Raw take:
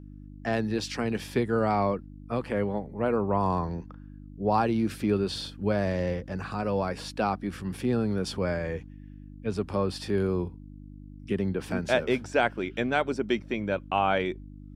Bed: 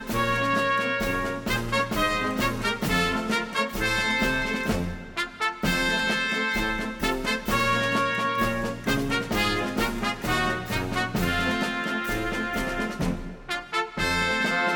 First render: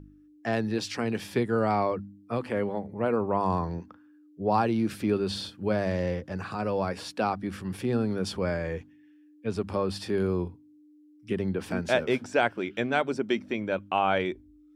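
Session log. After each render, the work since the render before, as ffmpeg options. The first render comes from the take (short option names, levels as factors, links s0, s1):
-af "bandreject=f=50:t=h:w=4,bandreject=f=100:t=h:w=4,bandreject=f=150:t=h:w=4,bandreject=f=200:t=h:w=4,bandreject=f=250:t=h:w=4"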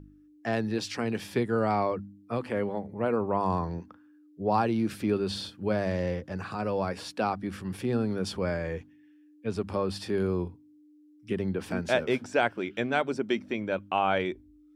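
-af "volume=0.891"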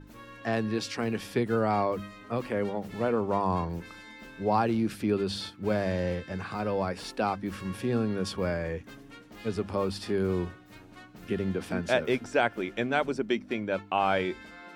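-filter_complex "[1:a]volume=0.0668[s0];[0:a][s0]amix=inputs=2:normalize=0"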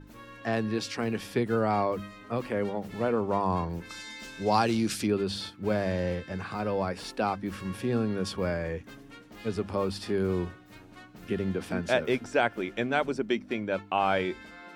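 -filter_complex "[0:a]asplit=3[s0][s1][s2];[s0]afade=t=out:st=3.89:d=0.02[s3];[s1]equalizer=f=6500:t=o:w=2.1:g=15,afade=t=in:st=3.89:d=0.02,afade=t=out:st=5.06:d=0.02[s4];[s2]afade=t=in:st=5.06:d=0.02[s5];[s3][s4][s5]amix=inputs=3:normalize=0"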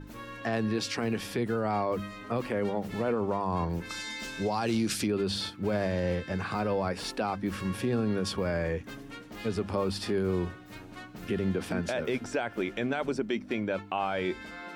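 -filter_complex "[0:a]asplit=2[s0][s1];[s1]acompressor=threshold=0.0158:ratio=6,volume=0.708[s2];[s0][s2]amix=inputs=2:normalize=0,alimiter=limit=0.1:level=0:latency=1:release=29"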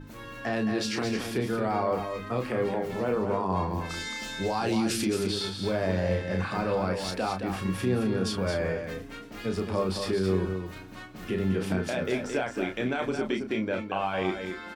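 -filter_complex "[0:a]asplit=2[s0][s1];[s1]adelay=32,volume=0.531[s2];[s0][s2]amix=inputs=2:normalize=0,aecho=1:1:220:0.447"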